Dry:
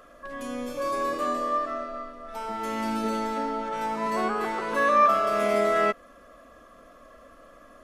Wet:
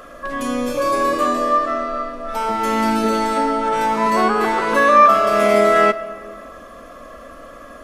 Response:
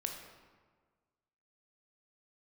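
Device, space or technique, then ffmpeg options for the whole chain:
ducked reverb: -filter_complex "[0:a]asettb=1/sr,asplit=3[s0][s1][s2];[s0]atrim=end=3.204[s3];[s1]atrim=start=3.2:end=3.82,asetpts=PTS-STARTPTS,afade=t=in:d=0.004:c=qsin,afade=t=out:st=0.616:d=0.004:c=qsin,equalizer=f=8600:w=6.2:g=9.5[s4];[s2]atrim=start=3.816[s5];[s3][s4]acrossfade=d=0.004:c1=hsin:c2=qsin[s6];[s6][s5]acrossfade=d=0.004:c1=qsin:c2=hsin,asplit=3[s7][s8][s9];[1:a]atrim=start_sample=2205[s10];[s8][s10]afir=irnorm=-1:irlink=0[s11];[s9]apad=whole_len=345508[s12];[s11][s12]sidechaincompress=threshold=0.0355:ratio=3:attack=16:release=702,volume=1[s13];[s7][s13]amix=inputs=2:normalize=0,volume=2.24"

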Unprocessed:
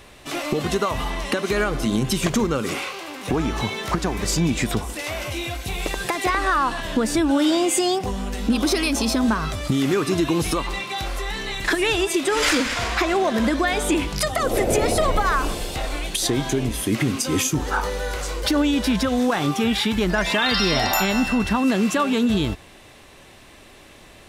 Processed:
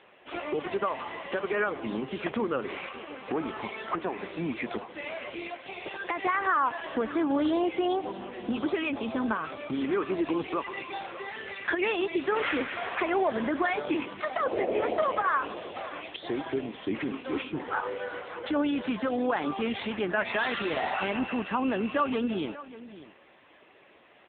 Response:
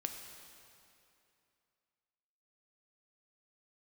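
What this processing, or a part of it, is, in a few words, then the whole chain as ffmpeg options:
satellite phone: -af "highpass=320,lowpass=3100,aecho=1:1:586:0.158,volume=0.631" -ar 8000 -c:a libopencore_amrnb -b:a 6700

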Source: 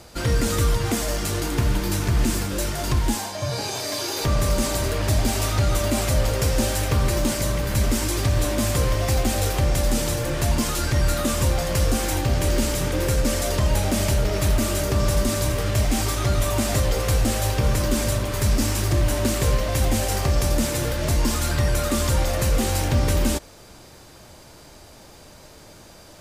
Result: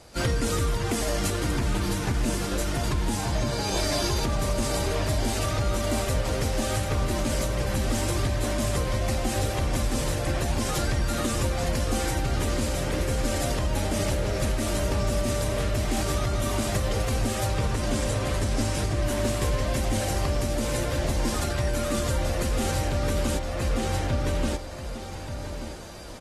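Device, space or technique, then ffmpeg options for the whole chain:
low-bitrate web radio: -filter_complex "[0:a]asettb=1/sr,asplit=3[s0][s1][s2];[s0]atrim=end=17.464[s3];[s1]atrim=start=17.46:end=19.02,asetpts=PTS-STARTPTS,afade=t=in:d=0.004:c=qsin,afade=t=out:st=1.556:d=0.004:c=qsin,lowpass=f=11000:w=0.5412,lowpass=f=11000:w=1.3066[s4];[s2]atrim=start=19.016[s5];[s3][s4]acrossfade=d=0.004:c1=hsin:c2=qsin[s6];[s6][s5]acrossfade=d=0.004:c1=qsin:c2=hsin,asplit=2[s7][s8];[s8]adelay=1183,lowpass=f=4700:p=1,volume=0.562,asplit=2[s9][s10];[s10]adelay=1183,lowpass=f=4700:p=1,volume=0.25,asplit=2[s11][s12];[s12]adelay=1183,lowpass=f=4700:p=1,volume=0.25[s13];[s7][s9][s11][s13]amix=inputs=4:normalize=0,dynaudnorm=f=110:g=3:m=2.37,alimiter=limit=0.266:level=0:latency=1:release=450,volume=0.501" -ar 44100 -c:a aac -b:a 32k

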